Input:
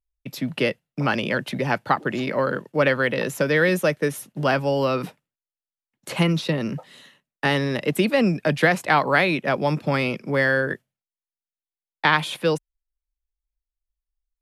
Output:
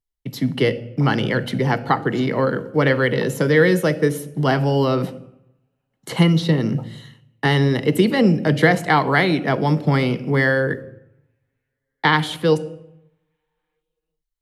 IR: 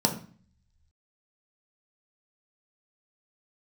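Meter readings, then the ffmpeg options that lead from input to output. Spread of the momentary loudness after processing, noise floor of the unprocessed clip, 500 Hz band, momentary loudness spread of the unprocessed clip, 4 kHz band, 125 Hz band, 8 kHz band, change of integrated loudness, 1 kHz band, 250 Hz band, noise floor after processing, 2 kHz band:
8 LU, under -85 dBFS, +3.0 dB, 8 LU, +2.5 dB, +7.5 dB, +1.0 dB, +3.5 dB, +2.0 dB, +5.5 dB, -79 dBFS, +1.0 dB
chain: -filter_complex "[0:a]asplit=2[s0][s1];[1:a]atrim=start_sample=2205,asetrate=22932,aresample=44100[s2];[s1][s2]afir=irnorm=-1:irlink=0,volume=0.1[s3];[s0][s3]amix=inputs=2:normalize=0"

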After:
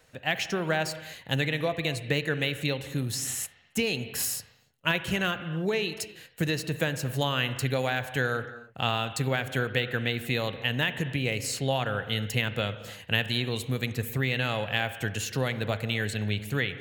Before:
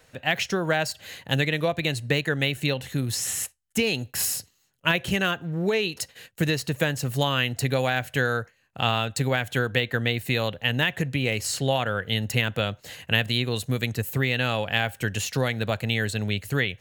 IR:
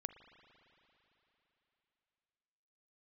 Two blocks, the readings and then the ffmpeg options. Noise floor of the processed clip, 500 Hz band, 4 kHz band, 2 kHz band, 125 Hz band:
-58 dBFS, -3.5 dB, -3.5 dB, -3.5 dB, -3.5 dB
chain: -filter_complex "[1:a]atrim=start_sample=2205,afade=t=out:st=0.36:d=0.01,atrim=end_sample=16317[s0];[0:a][s0]afir=irnorm=-1:irlink=0"

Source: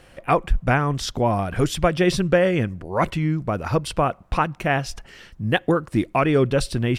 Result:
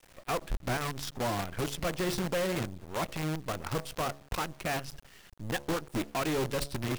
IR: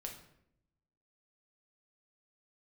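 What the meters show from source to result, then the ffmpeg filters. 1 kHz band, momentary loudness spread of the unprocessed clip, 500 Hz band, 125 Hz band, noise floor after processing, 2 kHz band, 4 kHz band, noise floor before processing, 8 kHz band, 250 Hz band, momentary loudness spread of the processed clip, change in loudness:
-12.0 dB, 6 LU, -12.5 dB, -13.5 dB, -57 dBFS, -11.0 dB, -7.0 dB, -51 dBFS, -4.5 dB, -12.5 dB, 6 LU, -11.5 dB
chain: -af "bandreject=f=70.85:t=h:w=4,bandreject=f=141.7:t=h:w=4,bandreject=f=212.55:t=h:w=4,bandreject=f=283.4:t=h:w=4,bandreject=f=354.25:t=h:w=4,bandreject=f=425.1:t=h:w=4,bandreject=f=495.95:t=h:w=4,bandreject=f=566.8:t=h:w=4,bandreject=f=637.65:t=h:w=4,asoftclip=type=tanh:threshold=0.0794,acrusher=bits=5:dc=4:mix=0:aa=0.000001,volume=0.422"

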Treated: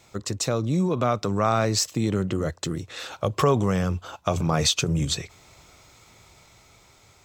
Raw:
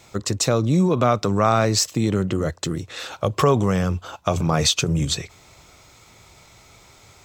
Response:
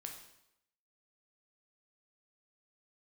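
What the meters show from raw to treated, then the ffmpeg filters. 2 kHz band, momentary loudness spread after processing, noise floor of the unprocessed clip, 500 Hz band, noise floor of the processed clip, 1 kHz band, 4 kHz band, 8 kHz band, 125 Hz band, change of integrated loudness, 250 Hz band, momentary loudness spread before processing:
-3.5 dB, 9 LU, -51 dBFS, -4.0 dB, -56 dBFS, -4.0 dB, -3.0 dB, -3.5 dB, -3.5 dB, -3.5 dB, -4.0 dB, 9 LU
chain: -af "dynaudnorm=f=560:g=5:m=1.78,volume=0.531"

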